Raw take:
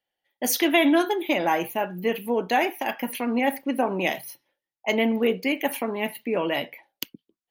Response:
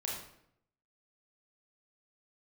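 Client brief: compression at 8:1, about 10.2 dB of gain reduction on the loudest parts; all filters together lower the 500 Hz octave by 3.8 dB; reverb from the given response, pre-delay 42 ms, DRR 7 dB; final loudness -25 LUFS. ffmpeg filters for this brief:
-filter_complex "[0:a]equalizer=f=500:t=o:g=-5,acompressor=threshold=-28dB:ratio=8,asplit=2[a][b];[1:a]atrim=start_sample=2205,adelay=42[c];[b][c]afir=irnorm=-1:irlink=0,volume=-9dB[d];[a][d]amix=inputs=2:normalize=0,volume=7.5dB"

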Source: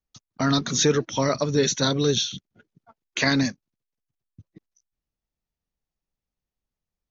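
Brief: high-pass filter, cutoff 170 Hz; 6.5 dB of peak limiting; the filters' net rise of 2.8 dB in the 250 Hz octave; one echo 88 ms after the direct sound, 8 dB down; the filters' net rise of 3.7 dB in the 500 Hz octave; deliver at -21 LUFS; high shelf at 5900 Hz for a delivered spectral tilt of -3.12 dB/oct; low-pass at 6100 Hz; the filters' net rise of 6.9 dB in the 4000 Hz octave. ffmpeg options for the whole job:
-af "highpass=170,lowpass=6.1k,equalizer=f=250:t=o:g=3,equalizer=f=500:t=o:g=3.5,equalizer=f=4k:t=o:g=7,highshelf=f=5.9k:g=4.5,alimiter=limit=-9dB:level=0:latency=1,aecho=1:1:88:0.398,volume=-1dB"

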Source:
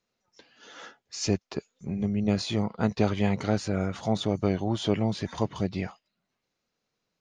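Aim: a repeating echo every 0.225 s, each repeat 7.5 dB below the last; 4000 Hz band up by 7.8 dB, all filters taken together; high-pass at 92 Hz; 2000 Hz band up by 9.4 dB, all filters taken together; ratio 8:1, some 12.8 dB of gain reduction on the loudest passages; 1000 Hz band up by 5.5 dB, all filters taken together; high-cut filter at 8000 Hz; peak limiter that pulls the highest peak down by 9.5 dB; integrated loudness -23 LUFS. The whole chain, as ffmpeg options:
-af "highpass=92,lowpass=8k,equalizer=f=1k:t=o:g=5.5,equalizer=f=2k:t=o:g=8.5,equalizer=f=4k:t=o:g=7,acompressor=threshold=-31dB:ratio=8,alimiter=level_in=1.5dB:limit=-24dB:level=0:latency=1,volume=-1.5dB,aecho=1:1:225|450|675|900|1125:0.422|0.177|0.0744|0.0312|0.0131,volume=14dB"

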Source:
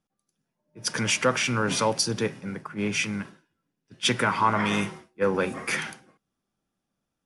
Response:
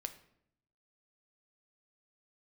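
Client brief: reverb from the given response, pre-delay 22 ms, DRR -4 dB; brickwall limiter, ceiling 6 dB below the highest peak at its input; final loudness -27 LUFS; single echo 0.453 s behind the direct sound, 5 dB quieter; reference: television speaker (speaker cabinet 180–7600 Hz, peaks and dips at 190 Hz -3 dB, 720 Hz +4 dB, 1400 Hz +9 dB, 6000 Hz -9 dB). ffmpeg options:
-filter_complex "[0:a]alimiter=limit=-16dB:level=0:latency=1,aecho=1:1:453:0.562,asplit=2[a][b];[1:a]atrim=start_sample=2205,adelay=22[c];[b][c]afir=irnorm=-1:irlink=0,volume=6dB[d];[a][d]amix=inputs=2:normalize=0,highpass=f=180:w=0.5412,highpass=f=180:w=1.3066,equalizer=f=190:t=q:w=4:g=-3,equalizer=f=720:t=q:w=4:g=4,equalizer=f=1.4k:t=q:w=4:g=9,equalizer=f=6k:t=q:w=4:g=-9,lowpass=f=7.6k:w=0.5412,lowpass=f=7.6k:w=1.3066,volume=-6dB"

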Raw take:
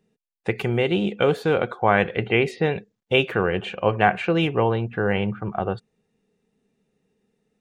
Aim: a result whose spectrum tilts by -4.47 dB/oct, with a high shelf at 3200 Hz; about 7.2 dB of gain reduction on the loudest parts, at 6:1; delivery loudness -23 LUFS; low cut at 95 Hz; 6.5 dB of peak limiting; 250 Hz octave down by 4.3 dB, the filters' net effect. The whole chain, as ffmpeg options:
-af "highpass=95,equalizer=f=250:t=o:g=-6.5,highshelf=f=3.2k:g=-3.5,acompressor=threshold=-21dB:ratio=6,volume=6.5dB,alimiter=limit=-9dB:level=0:latency=1"

